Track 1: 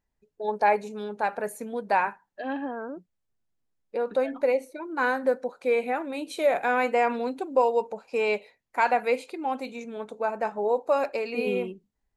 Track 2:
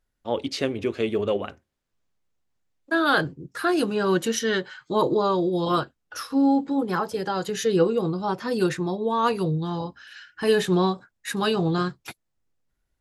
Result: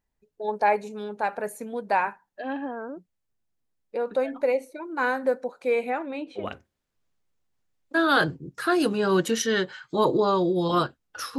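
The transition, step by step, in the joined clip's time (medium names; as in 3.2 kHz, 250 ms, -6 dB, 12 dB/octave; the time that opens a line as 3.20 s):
track 1
5.89–6.45 s: low-pass 8.2 kHz -> 1.4 kHz
6.40 s: go over to track 2 from 1.37 s, crossfade 0.10 s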